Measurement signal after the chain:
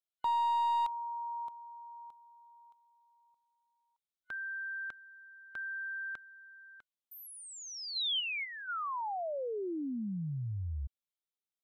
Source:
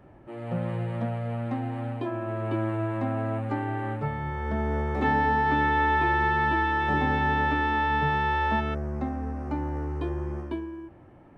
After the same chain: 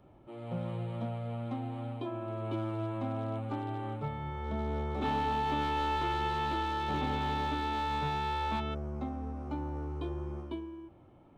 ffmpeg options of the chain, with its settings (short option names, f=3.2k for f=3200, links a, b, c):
-filter_complex "[0:a]aeval=exprs='clip(val(0),-1,0.0794)':c=same,superequalizer=11b=0.398:13b=2,acrossover=split=4200[a][b];[b]acompressor=threshold=-45dB:ratio=4:attack=1:release=60[c];[a][c]amix=inputs=2:normalize=0,volume=-6.5dB"